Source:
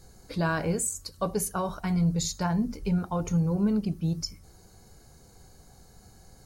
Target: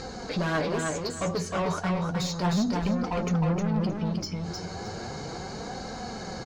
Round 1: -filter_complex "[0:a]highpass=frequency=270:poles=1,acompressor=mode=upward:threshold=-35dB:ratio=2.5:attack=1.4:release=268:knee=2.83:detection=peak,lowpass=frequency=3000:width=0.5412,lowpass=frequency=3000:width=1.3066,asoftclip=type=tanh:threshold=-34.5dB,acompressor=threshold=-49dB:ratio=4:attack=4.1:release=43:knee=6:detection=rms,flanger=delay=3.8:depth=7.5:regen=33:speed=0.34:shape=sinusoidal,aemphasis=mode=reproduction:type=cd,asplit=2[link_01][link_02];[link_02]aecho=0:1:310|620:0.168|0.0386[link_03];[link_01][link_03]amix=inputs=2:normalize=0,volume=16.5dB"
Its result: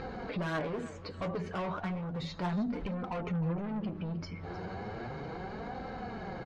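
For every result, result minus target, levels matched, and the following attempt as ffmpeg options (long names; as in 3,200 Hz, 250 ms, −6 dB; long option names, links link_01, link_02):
echo-to-direct −12 dB; downward compressor: peak gain reduction +6.5 dB; 4,000 Hz band −4.5 dB
-filter_complex "[0:a]highpass=frequency=270:poles=1,acompressor=mode=upward:threshold=-35dB:ratio=2.5:attack=1.4:release=268:knee=2.83:detection=peak,lowpass=frequency=3000:width=0.5412,lowpass=frequency=3000:width=1.3066,asoftclip=type=tanh:threshold=-34.5dB,acompressor=threshold=-49dB:ratio=4:attack=4.1:release=43:knee=6:detection=rms,flanger=delay=3.8:depth=7.5:regen=33:speed=0.34:shape=sinusoidal,aemphasis=mode=reproduction:type=cd,asplit=2[link_01][link_02];[link_02]aecho=0:1:310|620|930:0.668|0.154|0.0354[link_03];[link_01][link_03]amix=inputs=2:normalize=0,volume=16.5dB"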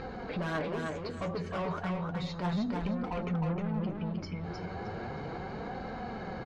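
downward compressor: peak gain reduction +6.5 dB; 4,000 Hz band −4.5 dB
-filter_complex "[0:a]highpass=frequency=270:poles=1,acompressor=mode=upward:threshold=-35dB:ratio=2.5:attack=1.4:release=268:knee=2.83:detection=peak,lowpass=frequency=3000:width=0.5412,lowpass=frequency=3000:width=1.3066,asoftclip=type=tanh:threshold=-34.5dB,acompressor=threshold=-40dB:ratio=4:attack=4.1:release=43:knee=6:detection=rms,flanger=delay=3.8:depth=7.5:regen=33:speed=0.34:shape=sinusoidal,aemphasis=mode=reproduction:type=cd,asplit=2[link_01][link_02];[link_02]aecho=0:1:310|620|930:0.668|0.154|0.0354[link_03];[link_01][link_03]amix=inputs=2:normalize=0,volume=16.5dB"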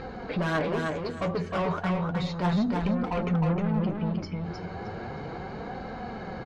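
4,000 Hz band −5.5 dB
-filter_complex "[0:a]highpass=frequency=270:poles=1,acompressor=mode=upward:threshold=-35dB:ratio=2.5:attack=1.4:release=268:knee=2.83:detection=peak,lowpass=frequency=6000:width=0.5412,lowpass=frequency=6000:width=1.3066,asoftclip=type=tanh:threshold=-34.5dB,acompressor=threshold=-40dB:ratio=4:attack=4.1:release=43:knee=6:detection=rms,flanger=delay=3.8:depth=7.5:regen=33:speed=0.34:shape=sinusoidal,aemphasis=mode=reproduction:type=cd,asplit=2[link_01][link_02];[link_02]aecho=0:1:310|620|930:0.668|0.154|0.0354[link_03];[link_01][link_03]amix=inputs=2:normalize=0,volume=16.5dB"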